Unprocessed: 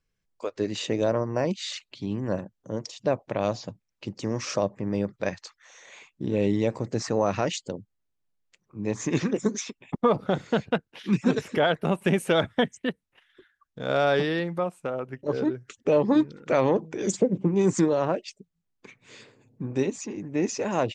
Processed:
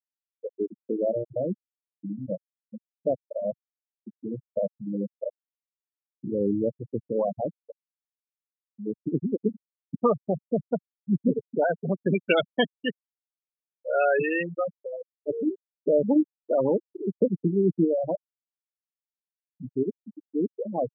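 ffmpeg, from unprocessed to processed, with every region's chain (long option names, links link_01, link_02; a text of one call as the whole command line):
ffmpeg -i in.wav -filter_complex "[0:a]asettb=1/sr,asplit=3[link_01][link_02][link_03];[link_01]atrim=end=12.154[link_04];[link_02]atrim=start=12.15:end=14.79,asetpts=PTS-STARTPTS,afade=type=in:duration=0.004:curve=qsin,afade=type=out:start_time=2.636:duration=0.004:curve=qsin,aeval=exprs='val(0)+0.5*0.0168*sgn(val(0))':channel_layout=same,lowpass=frequency=2700:width_type=q:width=4.3,lowshelf=frequency=110:gain=-7.5[link_05];[link_03]atrim=start=14.786[link_06];[link_04][link_05]acrossfade=duration=0.004:curve1=hsin:curve2=qsin[link_07];[link_07][link_06]acrossfade=duration=0.004:curve1=qsin:curve2=hsin,lowpass=5900,afftfilt=real='re*gte(hypot(re,im),0.251)':imag='im*gte(hypot(re,im),0.251)':win_size=1024:overlap=0.75,highpass=130" out.wav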